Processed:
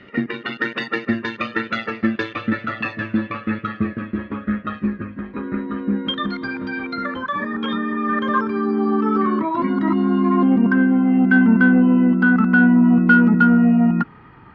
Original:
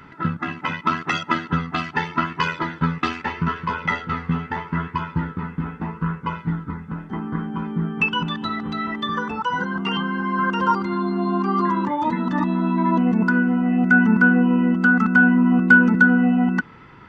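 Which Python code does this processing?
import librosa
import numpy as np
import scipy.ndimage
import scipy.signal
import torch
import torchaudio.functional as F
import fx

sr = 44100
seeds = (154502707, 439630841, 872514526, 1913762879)

p1 = fx.speed_glide(x, sr, from_pct=142, to_pct=93)
p2 = fx.dynamic_eq(p1, sr, hz=280.0, q=0.84, threshold_db=-25.0, ratio=4.0, max_db=4)
p3 = 10.0 ** (-10.5 / 20.0) * np.tanh(p2 / 10.0 ** (-10.5 / 20.0))
p4 = p2 + F.gain(torch.from_numpy(p3), -3.5).numpy()
p5 = fx.air_absorb(p4, sr, metres=250.0)
y = F.gain(torch.from_numpy(p5), -3.5).numpy()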